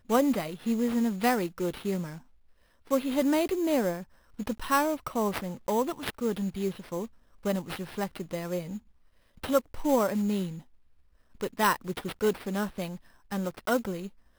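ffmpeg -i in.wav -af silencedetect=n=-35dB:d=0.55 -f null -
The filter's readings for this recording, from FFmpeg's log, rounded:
silence_start: 2.16
silence_end: 2.91 | silence_duration: 0.74
silence_start: 8.77
silence_end: 9.44 | silence_duration: 0.66
silence_start: 10.55
silence_end: 11.41 | silence_duration: 0.86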